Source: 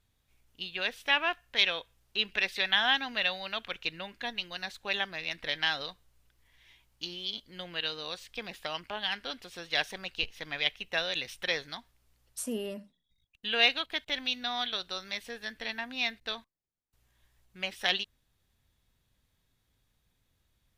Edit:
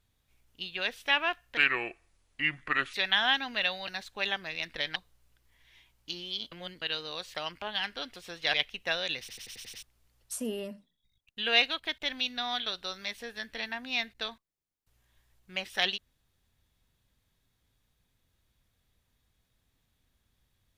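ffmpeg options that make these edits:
-filter_complex "[0:a]asplit=16[s0][s1][s2][s3][s4][s5][s6][s7][s8][s9][s10][s11][s12][s13][s14][s15];[s0]atrim=end=1.574[s16];[s1]atrim=start=1.57:end=2.54,asetpts=PTS-STARTPTS,asetrate=31311,aresample=44100,atrim=end_sample=60249,asetpts=PTS-STARTPTS[s17];[s2]atrim=start=2.536:end=3.482[s18];[s3]atrim=start=4.558:end=5.642[s19];[s4]atrim=start=5.888:end=7.452[s20];[s5]atrim=start=7.448:end=7.752,asetpts=PTS-STARTPTS,areverse[s21];[s6]atrim=start=7.748:end=8.282[s22];[s7]atrim=start=8.628:end=9.822[s23];[s8]atrim=start=10.598:end=11.352[s24];[s9]atrim=start=11.258:end=11.352[s25];[s10]atrim=start=11.258:end=11.352[s26];[s11]atrim=start=11.258:end=11.352[s27];[s12]atrim=start=11.258:end=11.352[s28];[s13]atrim=start=11.258:end=11.352[s29];[s14]atrim=start=11.258:end=11.352[s30];[s15]atrim=start=11.888[s31];[s16][s17]acrossfade=d=0.004:c1=hsin:c2=hsin[s32];[s32][s18]acrossfade=d=0.004:c1=hsin:c2=hsin[s33];[s33][s19]acrossfade=d=0.004:c1=hsin:c2=hsin[s34];[s34][s20]acrossfade=d=0.004:c1=hsin:c2=hsin[s35];[s35][s21]acrossfade=d=0.004:c1=hsin:c2=hsin[s36];[s36][s22]acrossfade=d=0.004:c1=hsin:c2=hsin[s37];[s37][s23]acrossfade=d=0.004:c1=hsin:c2=hsin[s38];[s38][s24]acrossfade=d=0.004:c1=hsin:c2=hsin[s39];[s39][s25]acrossfade=d=0.004:c1=hsin:c2=hsin[s40];[s40][s26]acrossfade=d=0.004:c1=hsin:c2=hsin[s41];[s41][s27]acrossfade=d=0.004:c1=hsin:c2=hsin[s42];[s42][s28]acrossfade=d=0.004:c1=hsin:c2=hsin[s43];[s43][s29]acrossfade=d=0.004:c1=hsin:c2=hsin[s44];[s44][s30]acrossfade=d=0.004:c1=hsin:c2=hsin[s45];[s45][s31]acrossfade=d=0.004:c1=hsin:c2=hsin"

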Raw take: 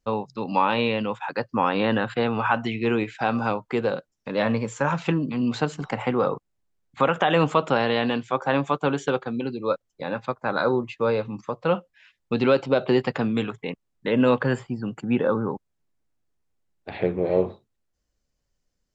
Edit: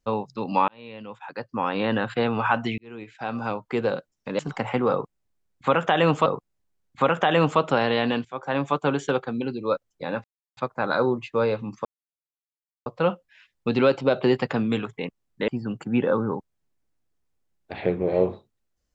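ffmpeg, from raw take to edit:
-filter_complex "[0:a]asplit=9[s0][s1][s2][s3][s4][s5][s6][s7][s8];[s0]atrim=end=0.68,asetpts=PTS-STARTPTS,afade=t=out:st=0.676:d=0.004:c=hsin[s9];[s1]atrim=start=0.68:end=2.78,asetpts=PTS-STARTPTS,afade=t=in:d=1.49,afade=t=out:st=2.096:d=0.004:c=hsin[s10];[s2]atrim=start=2.78:end=4.392,asetpts=PTS-STARTPTS,afade=t=in:d=1.08[s11];[s3]atrim=start=5.718:end=7.592[s12];[s4]atrim=start=6.248:end=8.24,asetpts=PTS-STARTPTS,afade=t=out:st=1.988:d=0.004:c=hsin:silence=0.188365[s13];[s5]atrim=start=8.24:end=10.23,asetpts=PTS-STARTPTS,afade=t=in:d=0.47:silence=0.188365,afade=t=out:st=1.986:d=0.004:c=hsin,apad=pad_dur=0.33[s14];[s6]atrim=start=10.23:end=11.51,asetpts=PTS-STARTPTS,afade=t=in:d=0.004:c=hsin,afade=t=out:st=1.276:d=0.004:c=hsin,apad=pad_dur=1.01[s15];[s7]atrim=start=11.51:end=14.132,asetpts=PTS-STARTPTS,afade=t=in:d=0.004:c=hsin[s16];[s8]atrim=start=14.648[s17];[s9][s10][s11]concat=n=3:v=0:a=1[s18];[s18][s12]acrossfade=d=0.004:c1=hsin:c2=hsin[s19];[s13][s14][s15][s16]concat=n=4:v=0:a=1[s20];[s19][s20]acrossfade=d=0.004:c1=hsin:c2=hsin[s21];[s21][s17]acrossfade=d=0.004:c1=hsin:c2=hsin"

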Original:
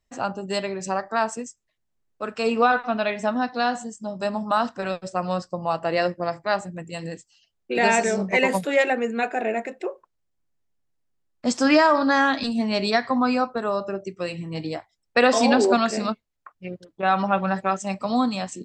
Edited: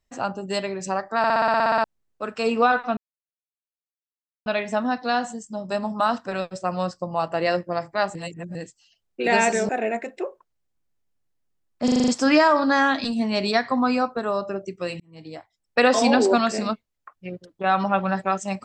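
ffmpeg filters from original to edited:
-filter_complex "[0:a]asplit=23[s0][s1][s2][s3][s4][s5][s6][s7][s8][s9][s10][s11][s12][s13][s14][s15][s16][s17][s18][s19][s20][s21][s22];[s0]atrim=end=1.242[s23];[s1]atrim=start=1.178:end=1.242[s24];[s2]atrim=start=1.178:end=1.242[s25];[s3]atrim=start=1.178:end=1.242[s26];[s4]atrim=start=1.178:end=1.242[s27];[s5]atrim=start=1.178:end=1.242[s28];[s6]atrim=start=1.178:end=1.242[s29];[s7]atrim=start=1.178:end=1.242[s30];[s8]atrim=start=1.178:end=1.242[s31];[s9]atrim=start=1.178:end=1.242[s32];[s10]atrim=start=1.178:end=1.242[s33];[s11]atrim=start=1.838:end=2.97,asetpts=PTS-STARTPTS,afade=t=out:st=1.128:d=0.004:c=hsin,apad=pad_dur=1.49[s34];[s12]atrim=start=2.97:end=6.662,asetpts=PTS-STARTPTS,afade=t=in:d=0.004:c=hsin[s35];[s13]atrim=start=6.658:end=7.062,asetpts=PTS-STARTPTS,areverse[s36];[s14]atrim=start=7.058:end=8.202[s37];[s15]atrim=start=9.318:end=11.512[s38];[s16]atrim=start=11.468:end=11.512[s39];[s17]atrim=start=11.468:end=11.512[s40];[s18]atrim=start=11.468:end=11.512[s41];[s19]atrim=start=11.468:end=11.512[s42];[s20]atrim=start=11.468:end=11.512[s43];[s21]atrim=start=11.468:end=14.39,asetpts=PTS-STARTPTS,afade=t=out:st=2.918:d=0.004:c=hsin[s44];[s22]atrim=start=14.39,asetpts=PTS-STARTPTS,afade=t=in:d=0.81[s45];[s23][s24]acrossfade=d=0.004:c1=hsin:c2=hsin[s46];[s46][s25]acrossfade=d=0.004:c1=hsin:c2=hsin[s47];[s47][s26]acrossfade=d=0.004:c1=hsin:c2=hsin[s48];[s48][s27]acrossfade=d=0.004:c1=hsin:c2=hsin[s49];[s49][s28]acrossfade=d=0.004:c1=hsin:c2=hsin[s50];[s50][s29]acrossfade=d=0.004:c1=hsin:c2=hsin[s51];[s51][s30]acrossfade=d=0.004:c1=hsin:c2=hsin[s52];[s52][s31]acrossfade=d=0.004:c1=hsin:c2=hsin[s53];[s53][s32]acrossfade=d=0.004:c1=hsin:c2=hsin[s54];[s54][s33]acrossfade=d=0.004:c1=hsin:c2=hsin[s55];[s34][s35]concat=n=2:v=0:a=1[s56];[s55][s56]acrossfade=d=0.004:c1=hsin:c2=hsin[s57];[s57][s36]acrossfade=d=0.004:c1=hsin:c2=hsin[s58];[s58][s37]acrossfade=d=0.004:c1=hsin:c2=hsin[s59];[s59][s38]acrossfade=d=0.004:c1=hsin:c2=hsin[s60];[s60][s39]acrossfade=d=0.004:c1=hsin:c2=hsin[s61];[s61][s40]acrossfade=d=0.004:c1=hsin:c2=hsin[s62];[s62][s41]acrossfade=d=0.004:c1=hsin:c2=hsin[s63];[s63][s42]acrossfade=d=0.004:c1=hsin:c2=hsin[s64];[s64][s43]acrossfade=d=0.004:c1=hsin:c2=hsin[s65];[s44][s45]concat=n=2:v=0:a=1[s66];[s65][s66]acrossfade=d=0.004:c1=hsin:c2=hsin"

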